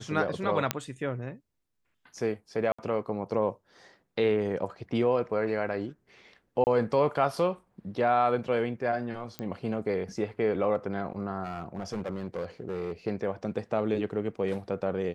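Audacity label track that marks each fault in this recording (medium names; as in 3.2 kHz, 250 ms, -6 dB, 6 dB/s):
0.710000	0.710000	pop -8 dBFS
2.720000	2.790000	dropout 65 ms
6.640000	6.670000	dropout 29 ms
9.390000	9.390000	pop -19 dBFS
11.430000	12.930000	clipped -28.5 dBFS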